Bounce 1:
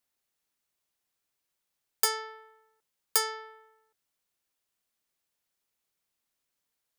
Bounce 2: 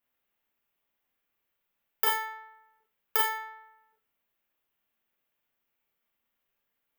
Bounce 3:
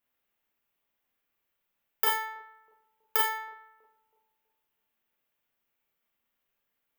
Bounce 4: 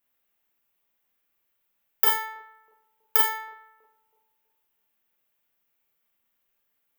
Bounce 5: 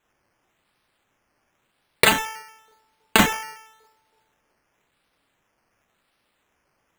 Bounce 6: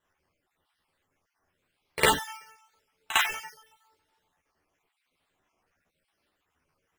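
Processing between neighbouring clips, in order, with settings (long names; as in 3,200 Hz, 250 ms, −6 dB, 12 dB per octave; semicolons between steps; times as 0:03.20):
flat-topped bell 6,600 Hz −14 dB; four-comb reverb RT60 0.32 s, combs from 27 ms, DRR −2 dB
bucket-brigade delay 323 ms, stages 2,048, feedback 38%, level −23 dB
high-shelf EQ 8,200 Hz +6 dB; level +1.5 dB
sample-and-hold swept by an LFO 9×, swing 60% 0.93 Hz; level +4 dB
time-frequency cells dropped at random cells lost 34%; multi-voice chorus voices 4, 0.66 Hz, delay 12 ms, depth 1.5 ms; echo ahead of the sound 54 ms −13 dB; level −2 dB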